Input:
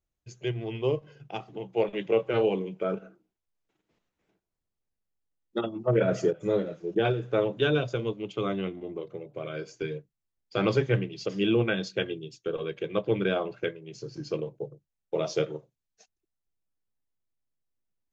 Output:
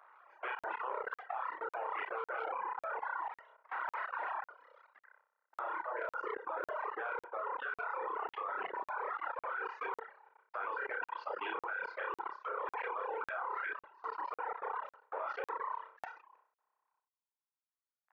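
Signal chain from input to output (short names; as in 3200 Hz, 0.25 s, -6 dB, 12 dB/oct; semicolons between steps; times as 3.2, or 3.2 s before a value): zero-crossing step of -32.5 dBFS; LPF 1300 Hz 24 dB/oct; doubler 33 ms -5.5 dB; flutter echo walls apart 5.3 m, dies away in 1.5 s; in parallel at -11 dB: soft clip -13 dBFS, distortion -16 dB; on the sum: harmonic-percussive split percussive +9 dB; reverb removal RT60 1.6 s; HPF 940 Hz 24 dB/oct; reverb removal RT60 0.68 s; level quantiser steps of 23 dB; crackling interface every 0.55 s, samples 2048, zero, from 0.59; sustainer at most 130 dB/s; gain +7.5 dB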